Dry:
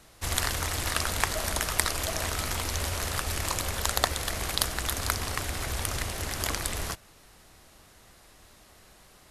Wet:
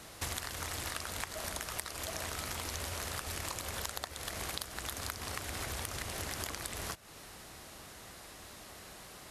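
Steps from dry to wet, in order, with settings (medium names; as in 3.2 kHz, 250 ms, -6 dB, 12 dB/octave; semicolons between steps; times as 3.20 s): high-pass 85 Hz 6 dB/octave; compression 12:1, threshold -41 dBFS, peak gain reduction 23.5 dB; trim +5.5 dB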